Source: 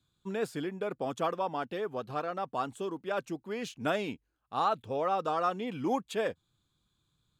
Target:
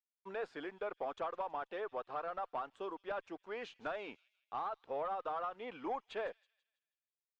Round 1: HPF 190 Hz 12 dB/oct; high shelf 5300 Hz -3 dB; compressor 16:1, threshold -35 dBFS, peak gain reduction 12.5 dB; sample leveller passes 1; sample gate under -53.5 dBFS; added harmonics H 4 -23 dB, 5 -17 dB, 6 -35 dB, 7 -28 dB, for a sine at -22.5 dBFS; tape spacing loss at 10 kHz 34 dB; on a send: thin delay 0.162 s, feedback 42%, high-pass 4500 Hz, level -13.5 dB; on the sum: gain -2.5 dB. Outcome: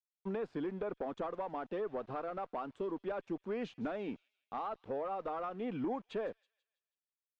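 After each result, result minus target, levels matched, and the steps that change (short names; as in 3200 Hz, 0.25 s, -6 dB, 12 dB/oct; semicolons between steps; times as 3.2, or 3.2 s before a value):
250 Hz band +8.5 dB; sample gate: distortion +6 dB
change: HPF 700 Hz 12 dB/oct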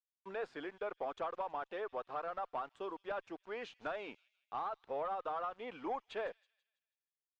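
sample gate: distortion +8 dB
change: sample gate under -60.5 dBFS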